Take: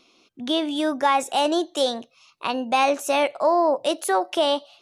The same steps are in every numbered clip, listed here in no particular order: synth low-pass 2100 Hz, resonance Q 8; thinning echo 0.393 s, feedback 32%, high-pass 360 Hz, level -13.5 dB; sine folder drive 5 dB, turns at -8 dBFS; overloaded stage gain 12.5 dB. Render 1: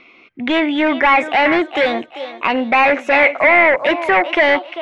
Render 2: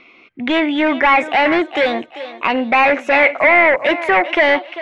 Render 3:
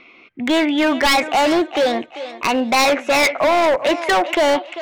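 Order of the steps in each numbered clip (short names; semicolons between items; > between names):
thinning echo > sine folder > overloaded stage > synth low-pass; sine folder > thinning echo > overloaded stage > synth low-pass; synth low-pass > sine folder > thinning echo > overloaded stage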